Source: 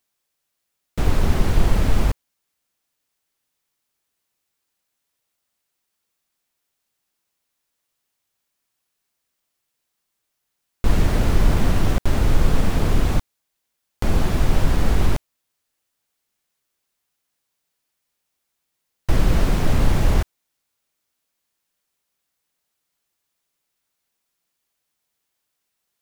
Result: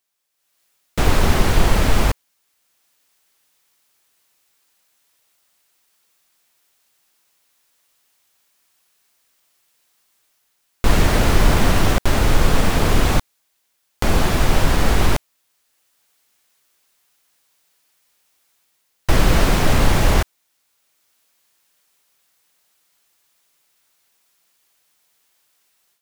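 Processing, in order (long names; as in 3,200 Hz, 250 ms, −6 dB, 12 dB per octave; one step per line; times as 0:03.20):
low-shelf EQ 400 Hz −8 dB
automatic gain control gain up to 13 dB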